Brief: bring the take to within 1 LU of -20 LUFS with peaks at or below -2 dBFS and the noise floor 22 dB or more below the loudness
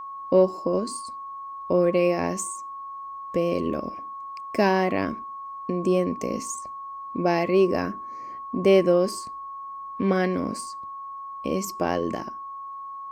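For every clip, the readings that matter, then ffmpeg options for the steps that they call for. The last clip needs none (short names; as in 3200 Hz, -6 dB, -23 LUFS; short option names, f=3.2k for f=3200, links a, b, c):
steady tone 1100 Hz; tone level -34 dBFS; loudness -25.0 LUFS; peak -7.5 dBFS; loudness target -20.0 LUFS
-> -af "bandreject=f=1.1k:w=30"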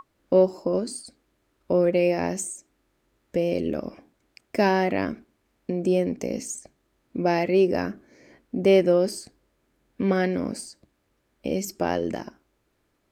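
steady tone none; loudness -24.5 LUFS; peak -7.5 dBFS; loudness target -20.0 LUFS
-> -af "volume=4.5dB"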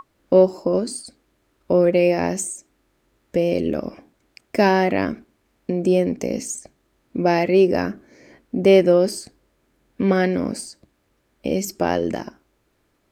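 loudness -20.0 LUFS; peak -3.0 dBFS; noise floor -67 dBFS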